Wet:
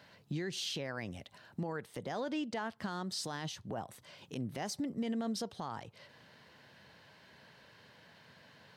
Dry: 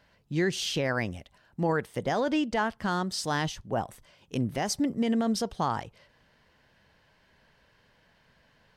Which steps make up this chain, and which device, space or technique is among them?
broadcast voice chain (high-pass filter 95 Hz 24 dB per octave; de-essing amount 55%; downward compressor 3 to 1, threshold −43 dBFS, peak gain reduction 16 dB; parametric band 4,000 Hz +4.5 dB 0.33 octaves; brickwall limiter −33.5 dBFS, peak gain reduction 8 dB)
level +4.5 dB

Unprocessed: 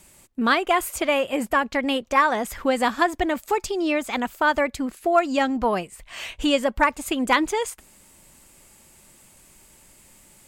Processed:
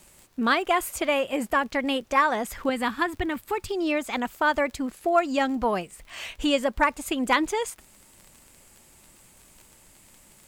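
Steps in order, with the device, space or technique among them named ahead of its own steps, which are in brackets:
0:02.69–0:03.69: graphic EQ with 15 bands 100 Hz +10 dB, 630 Hz −10 dB, 6,300 Hz −10 dB
vinyl LP (surface crackle 31 per second −35 dBFS; pink noise bed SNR 37 dB)
level −2.5 dB

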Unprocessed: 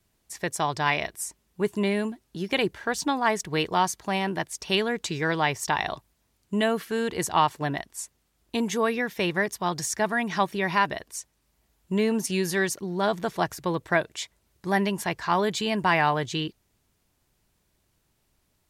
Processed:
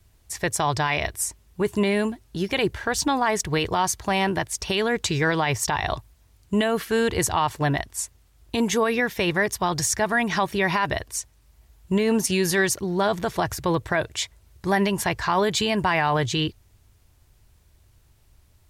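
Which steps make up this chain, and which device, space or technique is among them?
car stereo with a boomy subwoofer (low shelf with overshoot 130 Hz +9.5 dB, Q 1.5; brickwall limiter −18.5 dBFS, peak gain reduction 9.5 dB)
level +6.5 dB

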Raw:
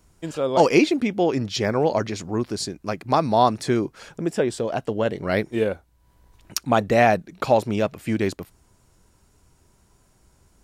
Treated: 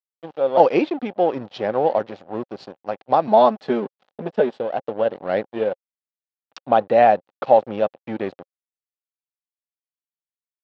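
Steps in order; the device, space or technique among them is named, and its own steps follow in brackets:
0:03.27–0:04.60: comb filter 4.7 ms, depth 95%
blown loudspeaker (dead-zone distortion −33 dBFS; loudspeaker in its box 160–3,700 Hz, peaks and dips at 540 Hz +9 dB, 780 Hz +9 dB, 2,200 Hz −5 dB)
level −2.5 dB

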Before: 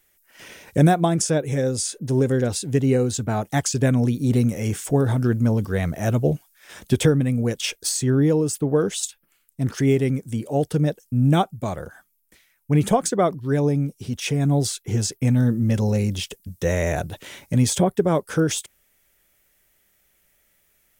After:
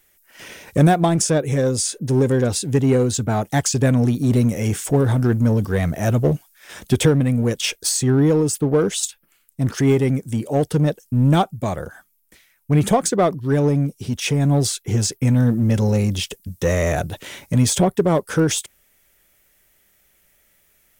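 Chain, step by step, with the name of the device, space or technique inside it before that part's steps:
parallel distortion (in parallel at −4.5 dB: hard clipping −20.5 dBFS, distortion −8 dB)

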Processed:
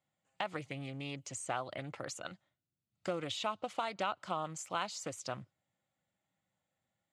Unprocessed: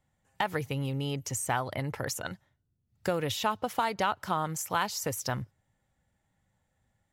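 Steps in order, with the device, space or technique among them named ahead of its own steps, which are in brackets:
full-range speaker at full volume (highs frequency-modulated by the lows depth 0.26 ms; loudspeaker in its box 220–7,700 Hz, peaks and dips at 240 Hz −6 dB, 430 Hz −9 dB, 900 Hz −7 dB, 1,700 Hz −8 dB, 5,600 Hz −8 dB)
level −3.5 dB

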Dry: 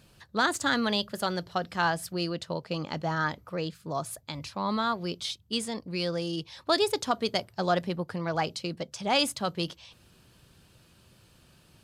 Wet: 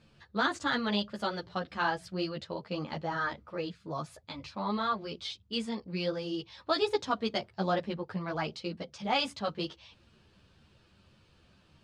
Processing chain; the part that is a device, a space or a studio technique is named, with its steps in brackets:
string-machine ensemble chorus (string-ensemble chorus; low-pass filter 4,500 Hz 12 dB per octave)

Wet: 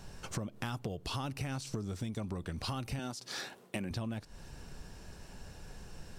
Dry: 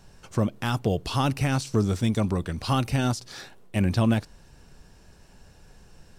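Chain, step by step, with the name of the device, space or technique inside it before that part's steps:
0:02.99–0:03.91: high-pass filter 180 Hz 12 dB per octave
serial compression, leveller first (downward compressor 3 to 1, threshold −27 dBFS, peak gain reduction 8 dB; downward compressor 5 to 1, threshold −39 dBFS, peak gain reduction 13.5 dB)
level +3 dB

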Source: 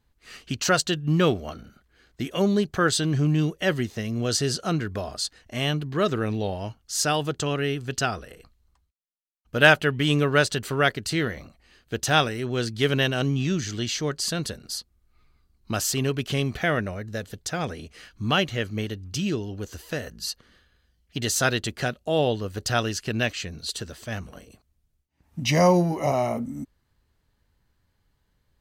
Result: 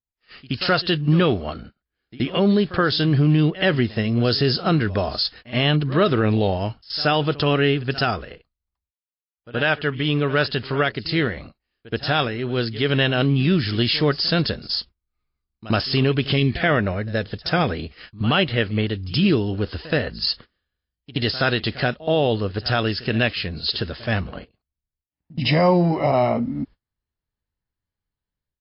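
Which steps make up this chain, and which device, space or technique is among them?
gain on a spectral selection 0:16.36–0:16.62, 420–1,700 Hz −12 dB
noise gate −45 dBFS, range −27 dB
high-shelf EQ 9,400 Hz +2.5 dB
echo ahead of the sound 75 ms −19 dB
low-bitrate web radio (automatic gain control gain up to 11.5 dB; brickwall limiter −7.5 dBFS, peak gain reduction 6.5 dB; level −1 dB; MP3 32 kbit/s 12,000 Hz)

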